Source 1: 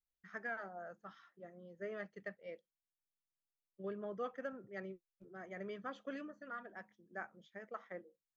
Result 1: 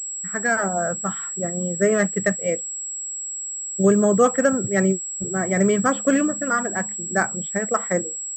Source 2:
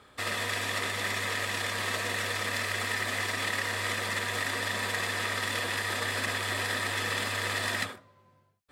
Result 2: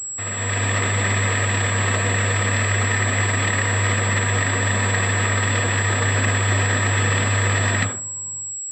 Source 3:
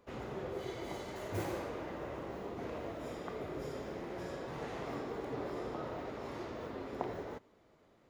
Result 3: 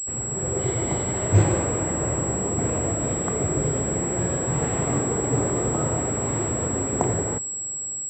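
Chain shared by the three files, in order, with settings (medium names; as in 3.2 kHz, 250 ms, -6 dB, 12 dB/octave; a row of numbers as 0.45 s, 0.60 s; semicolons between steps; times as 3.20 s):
level rider gain up to 10 dB; peaking EQ 110 Hz +13 dB 1.8 oct; class-D stage that switches slowly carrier 7.7 kHz; peak normalisation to -6 dBFS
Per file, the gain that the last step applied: +13.5 dB, -1.0 dB, +2.0 dB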